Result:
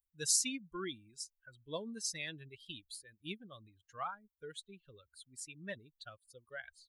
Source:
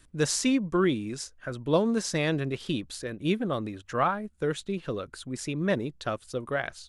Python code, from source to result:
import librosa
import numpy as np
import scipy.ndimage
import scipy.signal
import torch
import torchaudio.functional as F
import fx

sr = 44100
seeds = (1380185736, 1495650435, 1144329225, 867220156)

y = fx.bin_expand(x, sr, power=2.0)
y = F.preemphasis(torch.from_numpy(y), 0.9).numpy()
y = y * librosa.db_to_amplitude(3.0)